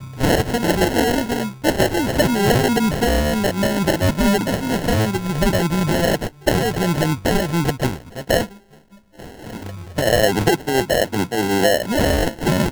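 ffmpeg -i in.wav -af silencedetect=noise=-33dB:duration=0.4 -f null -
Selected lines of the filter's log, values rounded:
silence_start: 8.51
silence_end: 9.19 | silence_duration: 0.68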